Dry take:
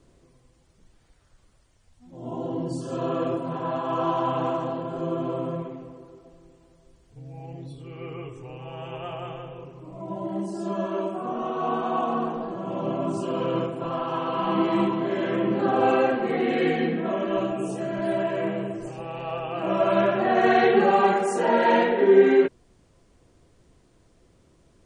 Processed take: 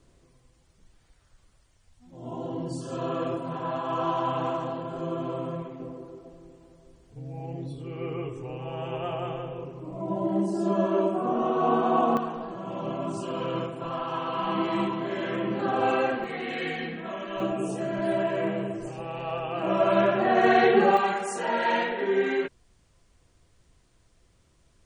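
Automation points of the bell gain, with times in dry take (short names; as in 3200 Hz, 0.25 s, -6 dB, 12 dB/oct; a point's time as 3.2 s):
bell 330 Hz 2.8 oct
-4 dB
from 5.8 s +4.5 dB
from 12.17 s -5.5 dB
from 16.24 s -12 dB
from 17.4 s -1 dB
from 20.97 s -10 dB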